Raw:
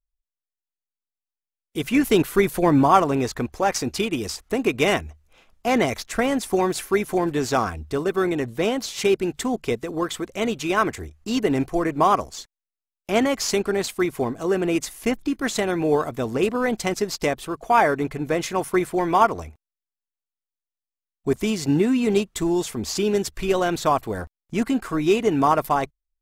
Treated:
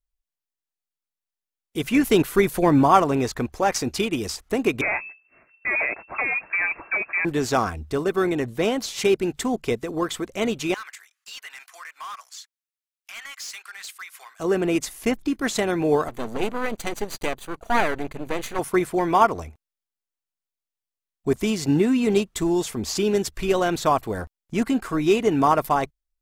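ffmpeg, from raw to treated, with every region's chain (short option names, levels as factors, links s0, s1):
-filter_complex "[0:a]asettb=1/sr,asplit=3[s0][s1][s2];[s0]atrim=end=4.814[s3];[s1]atrim=start=4.81:end=7.25,asetpts=PTS-STARTPTS,afade=t=in:d=0.004:c=qsin,afade=t=out:st=2.436:d=0.004:c=qsin,tiltshelf=f=780:g=-3,asoftclip=type=hard:threshold=0.1,lowpass=f=2300:t=q:w=0.5098,lowpass=f=2300:t=q:w=0.6013,lowpass=f=2300:t=q:w=0.9,lowpass=f=2300:t=q:w=2.563,afreqshift=-2700[s4];[s2]atrim=start=7.246[s5];[s3][s4]acrossfade=d=0.004:c1=hsin:c2=qsin[s6];[s6][s5]acrossfade=d=0.004:c1=qsin:c2=hsin,asettb=1/sr,asplit=3[s7][s8][s9];[s7]atrim=end=10.744[s10];[s8]atrim=start=10.74:end=14.4,asetpts=PTS-STARTPTS,afade=t=in:d=0.004:c=qsin,afade=t=out:st=3.656:d=0.004:c=qsin,highpass=f=1300:w=0.5412,highpass=f=1300:w=1.3066,acompressor=threshold=0.00794:ratio=1.5:attack=3.2:release=140:knee=1:detection=peak,asoftclip=type=hard:threshold=0.0266[s11];[s9]atrim=start=14.396[s12];[s10][s11]acrossfade=d=0.004:c1=hsin:c2=qsin[s13];[s13][s12]acrossfade=d=0.004:c1=qsin:c2=hsin,asettb=1/sr,asplit=3[s14][s15][s16];[s14]atrim=end=16.084[s17];[s15]atrim=start=16.08:end=18.59,asetpts=PTS-STARTPTS,afade=t=in:d=0.004:c=qsin,afade=t=out:st=2.506:d=0.004:c=qsin,aeval=exprs='max(val(0),0)':c=same,asuperstop=centerf=5300:order=12:qfactor=7.9[s18];[s16]atrim=start=18.586[s19];[s17][s18]acrossfade=d=0.004:c1=hsin:c2=qsin[s20];[s20][s19]acrossfade=d=0.004:c1=qsin:c2=hsin"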